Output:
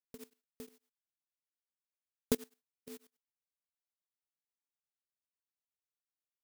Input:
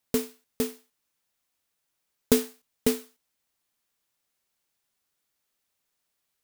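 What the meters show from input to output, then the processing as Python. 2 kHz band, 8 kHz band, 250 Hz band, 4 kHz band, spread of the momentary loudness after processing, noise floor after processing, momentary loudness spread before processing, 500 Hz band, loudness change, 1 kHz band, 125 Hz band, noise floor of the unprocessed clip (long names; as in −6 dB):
−15.0 dB, −14.5 dB, −14.5 dB, −14.5 dB, 20 LU, below −85 dBFS, 13 LU, −14.5 dB, −11.0 dB, −13.5 dB, −11.5 dB, −80 dBFS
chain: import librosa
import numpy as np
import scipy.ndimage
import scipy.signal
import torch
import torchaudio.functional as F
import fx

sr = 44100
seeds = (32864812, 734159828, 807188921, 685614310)

y = fx.level_steps(x, sr, step_db=19)
y = y * np.abs(np.cos(np.pi * 8.2 * np.arange(len(y)) / sr))
y = y * 10.0 ** (-7.5 / 20.0)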